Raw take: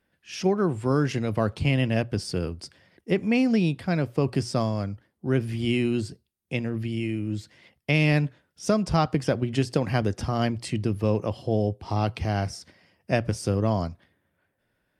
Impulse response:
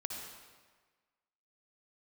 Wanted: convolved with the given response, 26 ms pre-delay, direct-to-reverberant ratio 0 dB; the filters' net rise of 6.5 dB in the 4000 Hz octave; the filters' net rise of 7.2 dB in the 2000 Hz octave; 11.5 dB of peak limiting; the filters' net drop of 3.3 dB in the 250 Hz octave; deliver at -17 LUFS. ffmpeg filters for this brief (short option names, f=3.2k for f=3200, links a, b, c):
-filter_complex "[0:a]equalizer=f=250:t=o:g=-4.5,equalizer=f=2k:t=o:g=7,equalizer=f=4k:t=o:g=6.5,alimiter=limit=-15.5dB:level=0:latency=1,asplit=2[a][b];[1:a]atrim=start_sample=2205,adelay=26[c];[b][c]afir=irnorm=-1:irlink=0,volume=-0.5dB[d];[a][d]amix=inputs=2:normalize=0,volume=9dB"